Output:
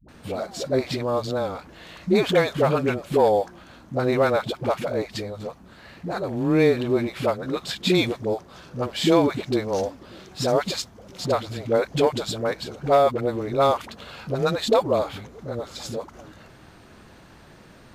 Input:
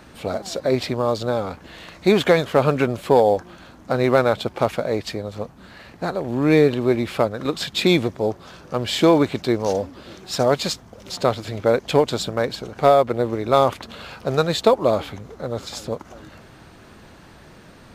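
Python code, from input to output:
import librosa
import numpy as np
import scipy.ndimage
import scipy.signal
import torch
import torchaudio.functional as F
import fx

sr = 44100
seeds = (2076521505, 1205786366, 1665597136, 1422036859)

y = fx.dispersion(x, sr, late='highs', ms=86.0, hz=370.0)
y = y * librosa.db_to_amplitude(-3.0)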